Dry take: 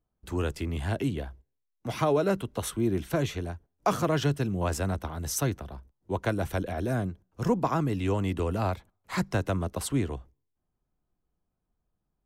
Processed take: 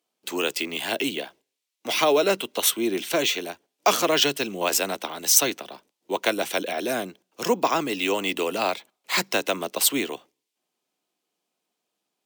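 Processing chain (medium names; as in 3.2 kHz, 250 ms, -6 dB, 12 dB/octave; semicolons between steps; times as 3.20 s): Bessel high-pass 390 Hz, order 4; resonant high shelf 2 kHz +7.5 dB, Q 1.5; careless resampling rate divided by 2×, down filtered, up hold; trim +7.5 dB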